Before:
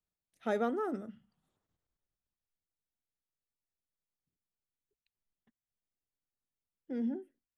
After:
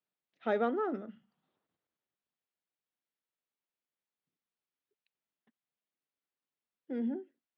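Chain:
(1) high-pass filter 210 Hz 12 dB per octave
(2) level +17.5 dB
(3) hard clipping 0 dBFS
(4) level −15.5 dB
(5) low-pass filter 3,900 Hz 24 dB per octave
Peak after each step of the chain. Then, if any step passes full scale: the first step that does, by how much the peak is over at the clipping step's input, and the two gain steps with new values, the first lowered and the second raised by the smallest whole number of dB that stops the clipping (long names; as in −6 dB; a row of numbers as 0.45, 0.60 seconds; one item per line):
−21.0, −3.5, −3.5, −19.0, −19.0 dBFS
no step passes full scale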